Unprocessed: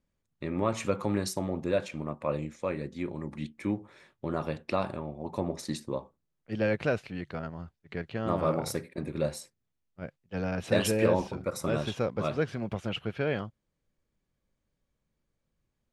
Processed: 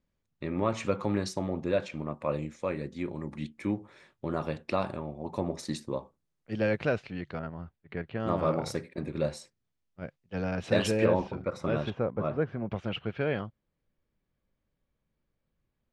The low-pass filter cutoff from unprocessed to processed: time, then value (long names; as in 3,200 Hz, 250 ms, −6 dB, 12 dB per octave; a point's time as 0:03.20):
6,000 Hz
from 0:02.13 9,800 Hz
from 0:06.79 5,600 Hz
from 0:07.39 2,800 Hz
from 0:08.20 6,700 Hz
from 0:11.05 3,300 Hz
from 0:11.90 1,500 Hz
from 0:12.71 3,700 Hz